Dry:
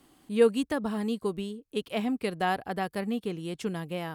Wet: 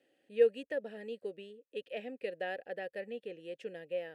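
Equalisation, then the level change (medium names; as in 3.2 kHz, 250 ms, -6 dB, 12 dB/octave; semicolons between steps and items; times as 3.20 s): vowel filter e; treble shelf 8.4 kHz +9.5 dB; +2.5 dB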